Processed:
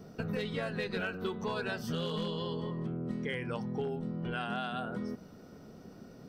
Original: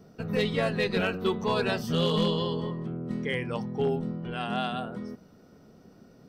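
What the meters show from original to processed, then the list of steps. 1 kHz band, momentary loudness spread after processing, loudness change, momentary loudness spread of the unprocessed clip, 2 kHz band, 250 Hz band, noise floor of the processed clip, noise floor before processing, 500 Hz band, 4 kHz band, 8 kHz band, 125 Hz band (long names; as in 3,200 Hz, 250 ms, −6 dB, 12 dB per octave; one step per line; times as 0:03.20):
−6.5 dB, 16 LU, −7.0 dB, 9 LU, −5.0 dB, −6.0 dB, −52 dBFS, −55 dBFS, −8.0 dB, −8.5 dB, −6.5 dB, −6.0 dB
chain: dynamic equaliser 1,500 Hz, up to +8 dB, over −54 dBFS, Q 6.6
downward compressor 6 to 1, threshold −36 dBFS, peak gain reduction 14 dB
level +3 dB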